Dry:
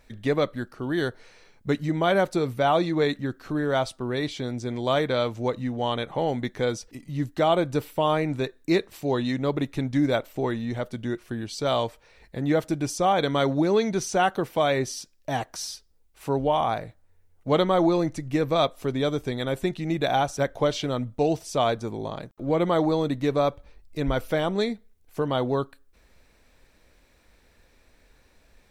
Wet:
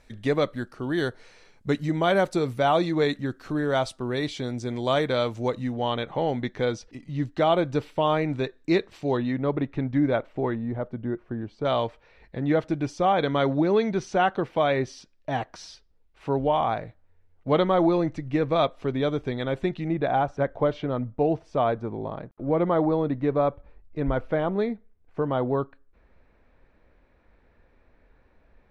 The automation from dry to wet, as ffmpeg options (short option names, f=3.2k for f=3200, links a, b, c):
-af "asetnsamples=n=441:p=0,asendcmd='5.74 lowpass f 4600;9.17 lowpass f 2100;10.55 lowpass f 1200;11.65 lowpass f 3200;19.88 lowpass f 1700',lowpass=11k"